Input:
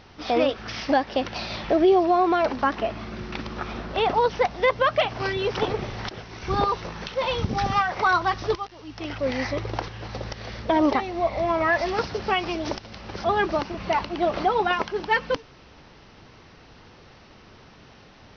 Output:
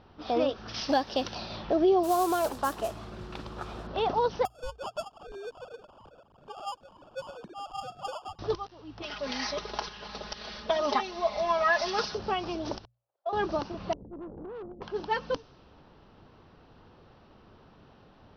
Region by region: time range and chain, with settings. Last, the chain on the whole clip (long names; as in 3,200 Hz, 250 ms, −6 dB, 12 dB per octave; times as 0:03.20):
0:00.74–0:01.35: high-shelf EQ 2,900 Hz +11.5 dB + log-companded quantiser 8 bits
0:02.03–0:03.87: noise that follows the level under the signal 15 dB + parametric band 240 Hz −7.5 dB 0.51 octaves
0:04.45–0:08.39: three sine waves on the formant tracks + downward compressor 1.5 to 1, threshold −47 dBFS + sample-rate reduction 2,000 Hz
0:09.02–0:12.15: tilt shelving filter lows −7.5 dB, about 850 Hz + comb filter 4.8 ms, depth 84%
0:12.85–0:13.33: noise gate −28 dBFS, range −37 dB + four-pole ladder high-pass 520 Hz, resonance 60%
0:13.93–0:14.82: Butterworth low-pass 520 Hz 96 dB per octave + tube saturation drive 33 dB, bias 0.75
whole clip: mains-hum notches 60/120 Hz; low-pass that shuts in the quiet parts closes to 2,700 Hz, open at −19 dBFS; parametric band 2,100 Hz −10.5 dB 0.67 octaves; level −5 dB